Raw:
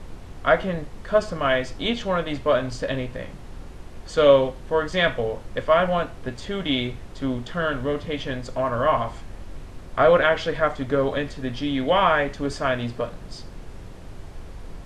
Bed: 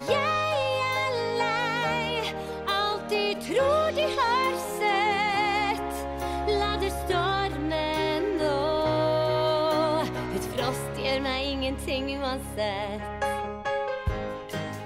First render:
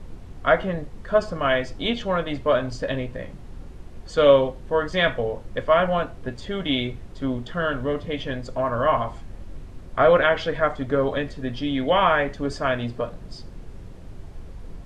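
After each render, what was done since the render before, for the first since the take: denoiser 6 dB, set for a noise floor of -40 dBFS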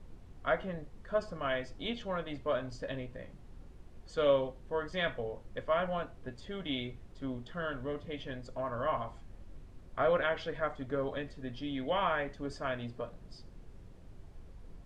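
gain -12.5 dB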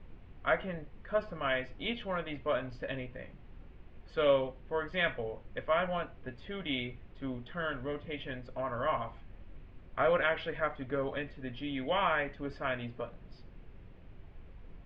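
synth low-pass 2600 Hz, resonance Q 2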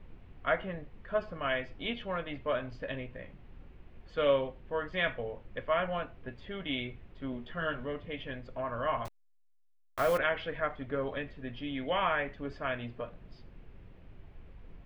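7.31–7.86 doubler 13 ms -4.5 dB; 9.05–10.18 level-crossing sampler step -37 dBFS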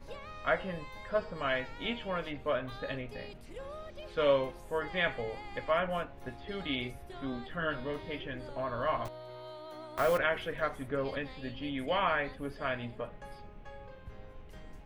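add bed -22 dB

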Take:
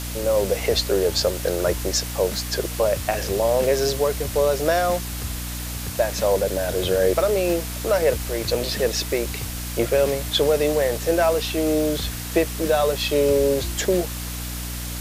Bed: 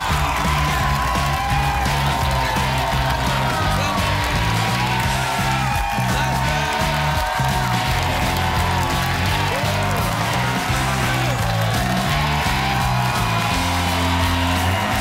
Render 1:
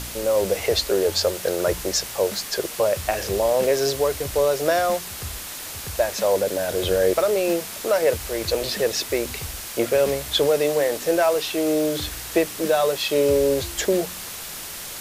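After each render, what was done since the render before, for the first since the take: de-hum 60 Hz, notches 5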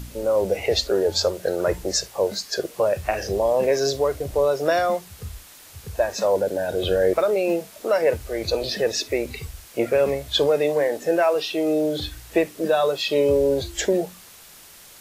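noise print and reduce 12 dB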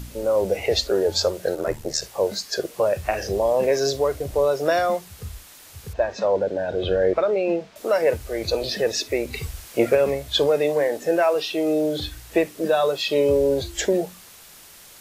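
1.54–2.02 ring modulator 38 Hz; 5.93–7.76 air absorption 160 m; 9.33–9.95 gain +3.5 dB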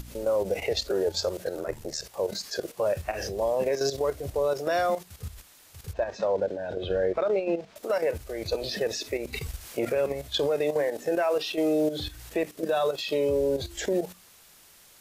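level quantiser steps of 11 dB; limiter -17.5 dBFS, peak gain reduction 6 dB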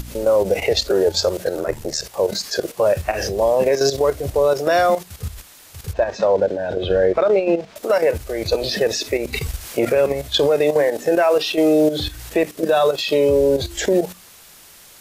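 gain +9.5 dB

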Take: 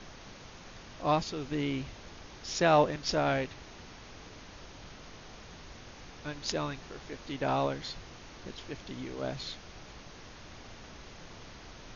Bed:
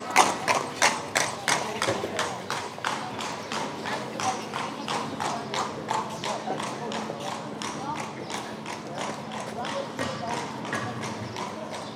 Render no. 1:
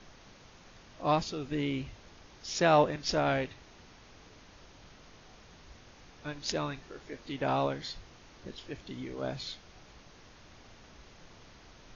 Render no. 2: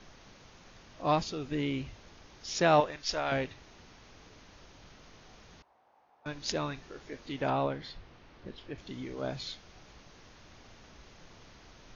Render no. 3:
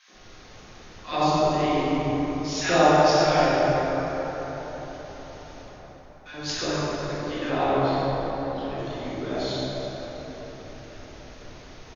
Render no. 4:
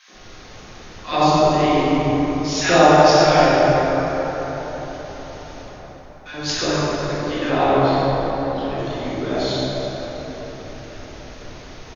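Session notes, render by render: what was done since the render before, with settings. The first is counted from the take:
noise print and reduce 6 dB
2.8–3.32 bell 180 Hz -13 dB 2.7 oct; 5.62–6.26 band-pass 810 Hz, Q 3.6; 7.5–8.78 air absorption 180 m
three bands offset in time highs, mids, lows 80/140 ms, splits 170/1200 Hz; plate-style reverb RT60 4.9 s, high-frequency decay 0.45×, DRR -10 dB
gain +6.5 dB; limiter -1 dBFS, peak gain reduction 1.5 dB

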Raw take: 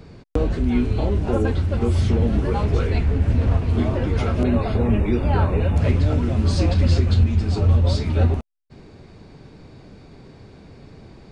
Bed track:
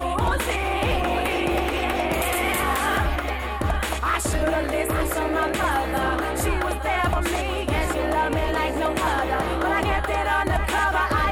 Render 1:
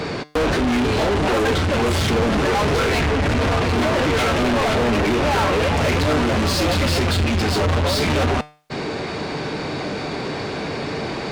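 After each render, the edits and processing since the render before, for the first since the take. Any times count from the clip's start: overdrive pedal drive 39 dB, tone 4500 Hz, clips at -7 dBFS; resonator 150 Hz, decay 0.41 s, harmonics all, mix 50%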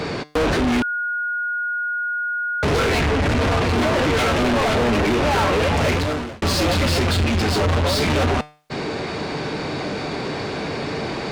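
0.82–2.63 bleep 1440 Hz -21 dBFS; 5.89–6.42 fade out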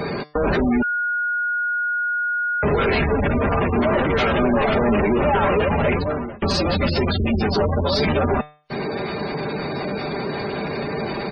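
spectral gate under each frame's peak -20 dB strong; comb 5 ms, depth 38%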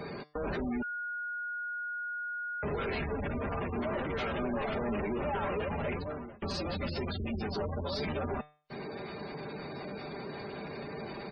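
gain -15 dB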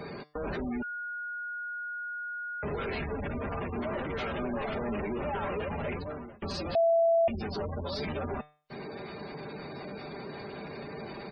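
6.75–7.28 bleep 667 Hz -20.5 dBFS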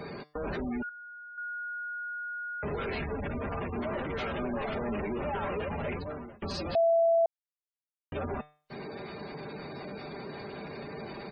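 0.89–1.38 band-pass 2100 Hz, Q 3.2; 7.26–8.12 mute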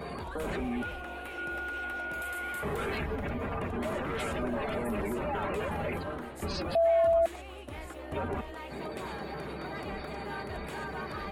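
add bed track -19 dB

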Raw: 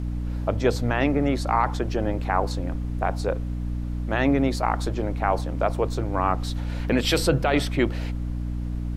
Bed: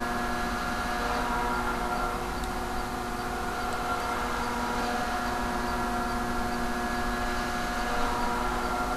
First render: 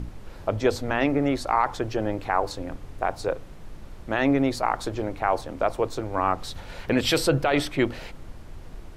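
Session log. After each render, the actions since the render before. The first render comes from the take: notches 60/120/180/240/300 Hz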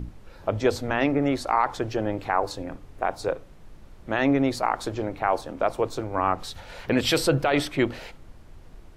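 noise print and reduce 6 dB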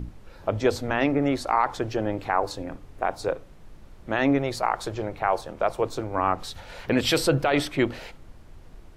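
4.38–5.82 bell 270 Hz -12.5 dB 0.28 oct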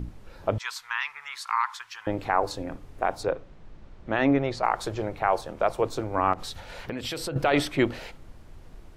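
0.58–2.07 elliptic high-pass 990 Hz; 3.23–4.64 air absorption 100 m; 6.33–7.36 compressor 5:1, threshold -30 dBFS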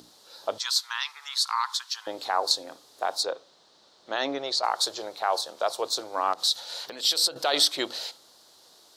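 HPF 580 Hz 12 dB/oct; resonant high shelf 3100 Hz +9.5 dB, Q 3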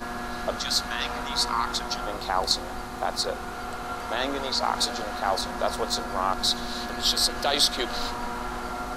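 add bed -3.5 dB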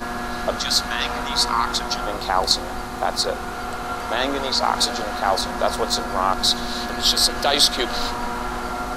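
gain +5.5 dB

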